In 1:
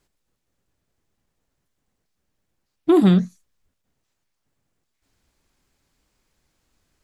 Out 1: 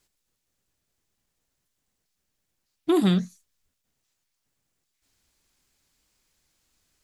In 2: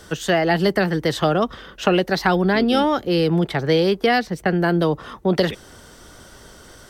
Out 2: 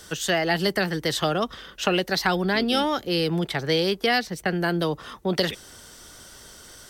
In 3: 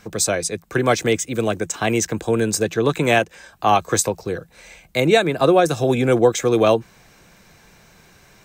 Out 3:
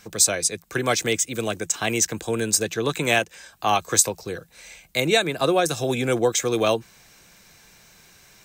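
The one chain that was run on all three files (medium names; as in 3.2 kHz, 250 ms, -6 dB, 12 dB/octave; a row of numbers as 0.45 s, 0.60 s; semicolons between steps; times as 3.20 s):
treble shelf 2.2 kHz +10.5 dB; trim -6.5 dB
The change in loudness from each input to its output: -7.0 LU, -4.5 LU, -3.0 LU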